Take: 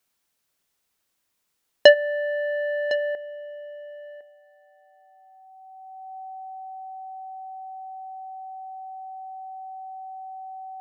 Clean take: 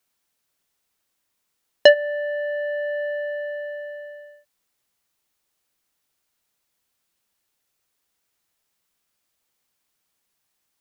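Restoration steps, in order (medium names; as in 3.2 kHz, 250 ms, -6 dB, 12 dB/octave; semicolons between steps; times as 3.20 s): band-stop 760 Hz, Q 30; inverse comb 1057 ms -16 dB; gain correction +11 dB, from 3.15 s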